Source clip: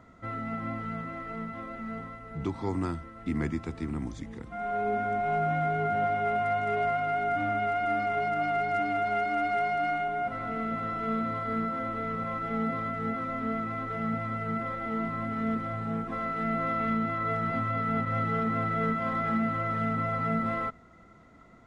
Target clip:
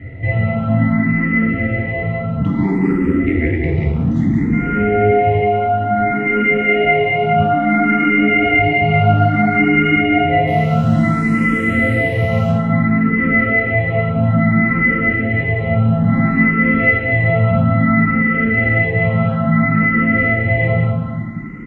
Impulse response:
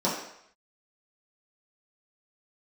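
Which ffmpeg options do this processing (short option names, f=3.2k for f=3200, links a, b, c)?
-filter_complex "[0:a]bass=f=250:g=13,treble=f=4k:g=-3,aecho=1:1:192|384|576|768|960:0.447|0.192|0.0826|0.0355|0.0153,acompressor=threshold=-23dB:ratio=6,asplit=3[a][b][c];[a]afade=t=out:st=10.46:d=0.02[d];[b]acrusher=bits=8:dc=4:mix=0:aa=0.000001,afade=t=in:st=10.46:d=0.02,afade=t=out:st=12.5:d=0.02[e];[c]afade=t=in:st=12.5:d=0.02[f];[d][e][f]amix=inputs=3:normalize=0,acontrast=51[g];[1:a]atrim=start_sample=2205,asetrate=22932,aresample=44100[h];[g][h]afir=irnorm=-1:irlink=0,afftfilt=real='re*lt(hypot(re,im),7.08)':imag='im*lt(hypot(re,im),7.08)':win_size=1024:overlap=0.75,equalizer=f=2k:w=3.3:g=13.5,asplit=2[i][j];[j]afreqshift=0.59[k];[i][k]amix=inputs=2:normalize=1,volume=-6.5dB"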